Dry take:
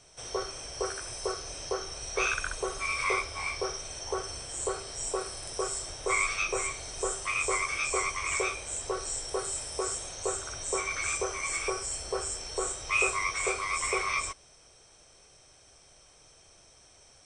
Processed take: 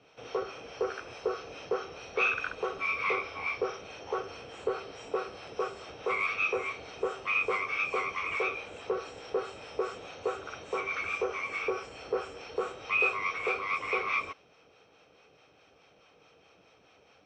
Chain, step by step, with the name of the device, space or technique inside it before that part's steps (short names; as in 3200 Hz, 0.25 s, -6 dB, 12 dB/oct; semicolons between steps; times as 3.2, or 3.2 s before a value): guitar amplifier with harmonic tremolo (harmonic tremolo 4.7 Hz, depth 50%, crossover 620 Hz; soft clip -25.5 dBFS, distortion -16 dB; speaker cabinet 100–4100 Hz, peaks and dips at 190 Hz +7 dB, 280 Hz +8 dB, 470 Hz +10 dB, 800 Hz +5 dB, 1300 Hz +7 dB, 2600 Hz +9 dB); gain -1.5 dB